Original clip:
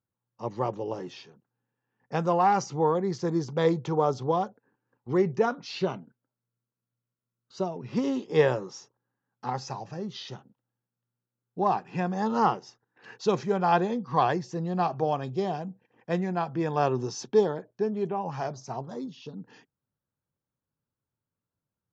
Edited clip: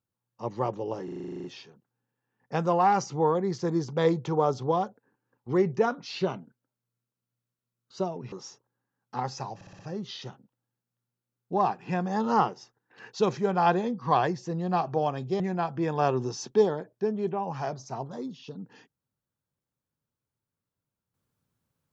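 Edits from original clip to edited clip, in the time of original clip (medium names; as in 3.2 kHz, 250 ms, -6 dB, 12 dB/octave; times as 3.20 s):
1.04 s: stutter 0.04 s, 11 plays
7.92–8.62 s: delete
9.85 s: stutter 0.06 s, 5 plays
15.46–16.18 s: delete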